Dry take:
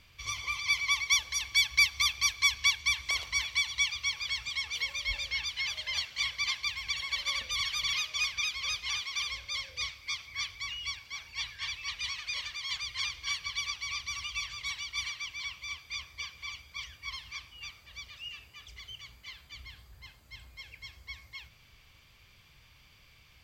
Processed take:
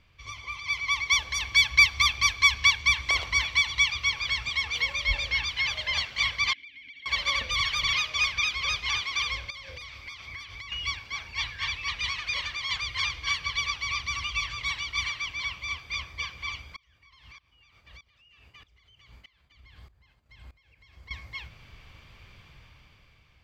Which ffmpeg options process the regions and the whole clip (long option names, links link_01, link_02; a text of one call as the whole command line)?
ffmpeg -i in.wav -filter_complex "[0:a]asettb=1/sr,asplit=3[link_01][link_02][link_03];[link_01]atrim=end=6.534[link_04];[link_02]atrim=start=6.53:end=7.06,asetpts=PTS-STARTPTS,afade=type=in:duration=0.004:curve=qsin,afade=type=out:start_time=0.526:duration=0.004:curve=qsin,asplit=3[link_05][link_06][link_07];[link_05]bandpass=frequency=270:width_type=q:width=8,volume=0dB[link_08];[link_06]bandpass=frequency=2290:width_type=q:width=8,volume=-6dB[link_09];[link_07]bandpass=frequency=3010:width_type=q:width=8,volume=-9dB[link_10];[link_08][link_09][link_10]amix=inputs=3:normalize=0,acompressor=threshold=-50dB:ratio=6:attack=3.2:release=140:knee=1:detection=peak[link_11];[link_03]atrim=start=7.056[link_12];[link_04][link_11]acrossfade=duration=0.004:curve1=hsin:curve2=qsin[link_13];[link_13][link_12]acrossfade=duration=0.004:curve1=qsin:curve2=hsin,asettb=1/sr,asplit=3[link_14][link_15][link_16];[link_14]atrim=end=9.504[link_17];[link_15]atrim=start=9.5:end=10.72,asetpts=PTS-STARTPTS,afade=type=in:duration=0.004:curve=qsin,afade=type=out:start_time=1.216:duration=0.004:curve=qsin,asoftclip=type=hard:threshold=-27dB,acompressor=threshold=-43dB:ratio=16:attack=3.2:release=140:knee=1:detection=peak[link_18];[link_16]atrim=start=10.716[link_19];[link_17][link_18]acrossfade=duration=0.004:curve1=hsin:curve2=qsin[link_20];[link_20][link_19]acrossfade=duration=0.004:curve1=qsin:curve2=hsin,asettb=1/sr,asplit=3[link_21][link_22][link_23];[link_21]atrim=end=16.764[link_24];[link_22]atrim=start=16.76:end=21.11,asetpts=PTS-STARTPTS,afade=type=in:duration=0.004:curve=qsin,afade=type=out:start_time=4.346:duration=0.004:curve=qsin,agate=range=-33dB:threshold=-54dB:ratio=3:release=100:detection=peak,acompressor=threshold=-51dB:ratio=12:attack=3.2:release=140:knee=1:detection=peak,aeval=exprs='val(0)*pow(10,-20*if(lt(mod(-1.6*n/s,1),2*abs(-1.6)/1000),1-mod(-1.6*n/s,1)/(2*abs(-1.6)/1000),(mod(-1.6*n/s,1)-2*abs(-1.6)/1000)/(1-2*abs(-1.6)/1000))/20)':channel_layout=same[link_25];[link_23]atrim=start=21.106[link_26];[link_24][link_25]acrossfade=duration=0.004:curve1=hsin:curve2=qsin[link_27];[link_27][link_26]acrossfade=duration=0.004:curve1=qsin:curve2=hsin,lowpass=frequency=1800:poles=1,dynaudnorm=framelen=180:gausssize=11:maxgain=11dB" out.wav